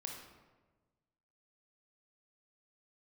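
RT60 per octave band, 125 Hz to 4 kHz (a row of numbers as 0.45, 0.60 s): 1.7, 1.5, 1.4, 1.2, 1.0, 0.75 s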